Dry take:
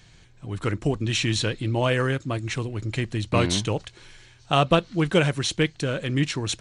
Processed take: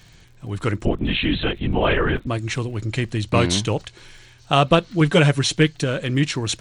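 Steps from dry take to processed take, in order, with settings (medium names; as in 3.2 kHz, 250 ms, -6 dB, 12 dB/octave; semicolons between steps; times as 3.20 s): 0.85–2.27 s: LPC vocoder at 8 kHz whisper; 5.00–5.84 s: comb 7 ms, depth 60%; crackle 49 per s -45 dBFS; trim +3.5 dB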